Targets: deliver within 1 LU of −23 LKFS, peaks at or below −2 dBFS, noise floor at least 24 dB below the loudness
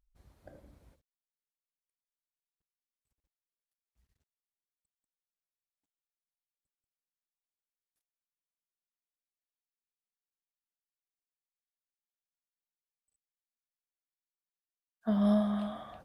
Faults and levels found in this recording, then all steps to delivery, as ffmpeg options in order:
integrated loudness −30.5 LKFS; sample peak −19.0 dBFS; target loudness −23.0 LKFS
→ -af "volume=7.5dB"

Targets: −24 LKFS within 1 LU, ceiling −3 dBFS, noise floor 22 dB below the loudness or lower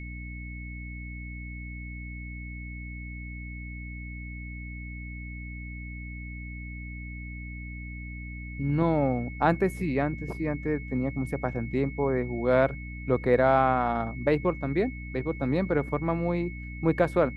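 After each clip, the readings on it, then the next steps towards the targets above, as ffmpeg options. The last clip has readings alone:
mains hum 60 Hz; hum harmonics up to 300 Hz; level of the hum −36 dBFS; interfering tone 2,200 Hz; level of the tone −43 dBFS; integrated loudness −30.0 LKFS; sample peak −8.0 dBFS; target loudness −24.0 LKFS
→ -af "bandreject=frequency=60:width_type=h:width=4,bandreject=frequency=120:width_type=h:width=4,bandreject=frequency=180:width_type=h:width=4,bandreject=frequency=240:width_type=h:width=4,bandreject=frequency=300:width_type=h:width=4"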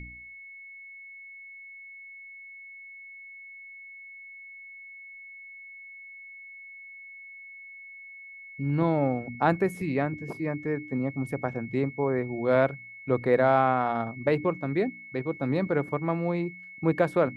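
mains hum none found; interfering tone 2,200 Hz; level of the tone −43 dBFS
→ -af "bandreject=frequency=2200:width=30"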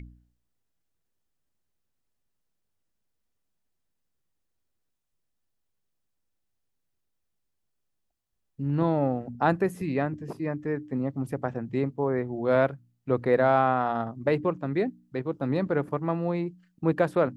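interfering tone none found; integrated loudness −27.5 LKFS; sample peak −8.5 dBFS; target loudness −24.0 LKFS
→ -af "volume=3.5dB"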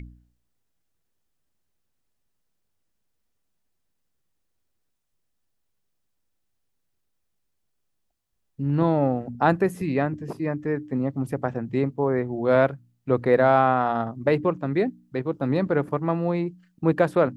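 integrated loudness −24.0 LKFS; sample peak −5.0 dBFS; background noise floor −75 dBFS

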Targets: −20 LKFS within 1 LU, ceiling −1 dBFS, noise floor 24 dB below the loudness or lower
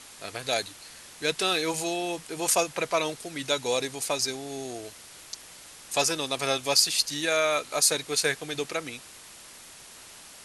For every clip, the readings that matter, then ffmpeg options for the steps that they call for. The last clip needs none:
background noise floor −48 dBFS; target noise floor −51 dBFS; integrated loudness −26.5 LKFS; sample peak −6.0 dBFS; target loudness −20.0 LKFS
→ -af "afftdn=noise_reduction=6:noise_floor=-48"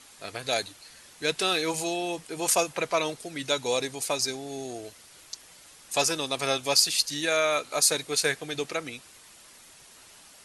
background noise floor −52 dBFS; integrated loudness −26.5 LKFS; sample peak −6.0 dBFS; target loudness −20.0 LKFS
→ -af "volume=6.5dB,alimiter=limit=-1dB:level=0:latency=1"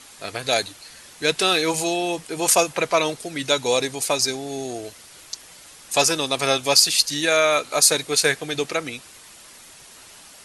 integrated loudness −20.0 LKFS; sample peak −1.0 dBFS; background noise floor −46 dBFS

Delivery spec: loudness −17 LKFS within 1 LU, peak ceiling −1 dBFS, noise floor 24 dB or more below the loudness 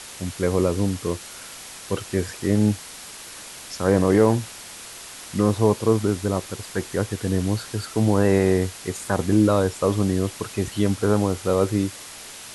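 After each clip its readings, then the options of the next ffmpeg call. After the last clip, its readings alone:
background noise floor −40 dBFS; target noise floor −47 dBFS; integrated loudness −22.5 LKFS; sample peak −4.5 dBFS; target loudness −17.0 LKFS
→ -af "afftdn=noise_reduction=7:noise_floor=-40"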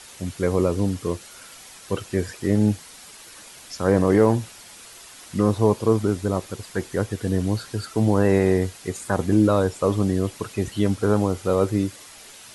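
background noise floor −45 dBFS; target noise floor −47 dBFS
→ -af "afftdn=noise_reduction=6:noise_floor=-45"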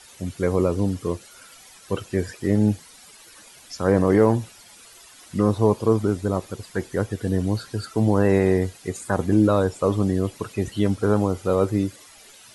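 background noise floor −48 dBFS; integrated loudness −22.5 LKFS; sample peak −5.0 dBFS; target loudness −17.0 LKFS
→ -af "volume=5.5dB,alimiter=limit=-1dB:level=0:latency=1"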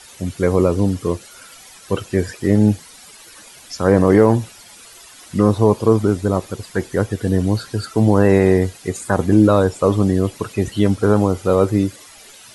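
integrated loudness −17.5 LKFS; sample peak −1.0 dBFS; background noise floor −43 dBFS

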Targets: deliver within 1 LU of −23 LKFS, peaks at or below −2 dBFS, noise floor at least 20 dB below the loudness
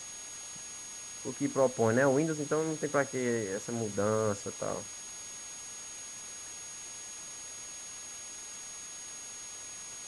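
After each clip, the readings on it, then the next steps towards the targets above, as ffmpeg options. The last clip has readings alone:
interfering tone 6,600 Hz; level of the tone −43 dBFS; background noise floor −45 dBFS; target noise floor −55 dBFS; integrated loudness −34.5 LKFS; sample peak −14.5 dBFS; target loudness −23.0 LKFS
→ -af "bandreject=frequency=6600:width=30"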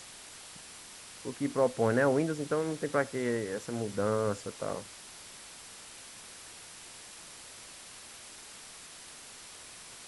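interfering tone none found; background noise floor −49 dBFS; target noise floor −52 dBFS
→ -af "afftdn=noise_reduction=6:noise_floor=-49"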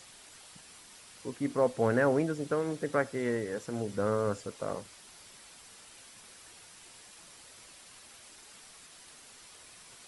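background noise floor −54 dBFS; integrated loudness −31.5 LKFS; sample peak −14.5 dBFS; target loudness −23.0 LKFS
→ -af "volume=8.5dB"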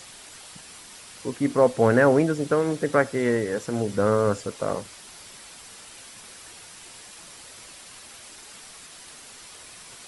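integrated loudness −23.0 LKFS; sample peak −6.0 dBFS; background noise floor −46 dBFS

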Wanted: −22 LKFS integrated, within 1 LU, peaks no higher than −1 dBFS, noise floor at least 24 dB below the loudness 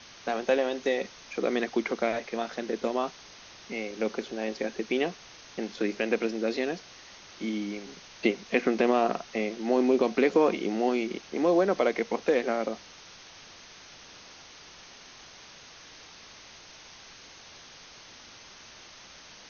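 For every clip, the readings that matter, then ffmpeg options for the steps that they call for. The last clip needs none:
background noise floor −50 dBFS; target noise floor −53 dBFS; integrated loudness −28.5 LKFS; sample peak −11.0 dBFS; target loudness −22.0 LKFS
→ -af "afftdn=noise_reduction=6:noise_floor=-50"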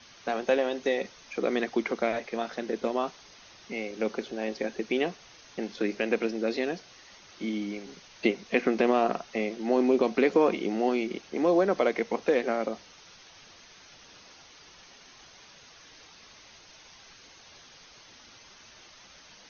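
background noise floor −53 dBFS; integrated loudness −28.5 LKFS; sample peak −11.0 dBFS; target loudness −22.0 LKFS
→ -af "volume=6.5dB"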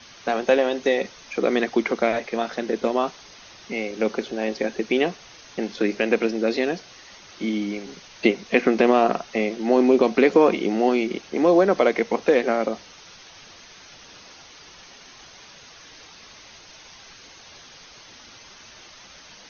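integrated loudness −22.0 LKFS; sample peak −4.5 dBFS; background noise floor −47 dBFS

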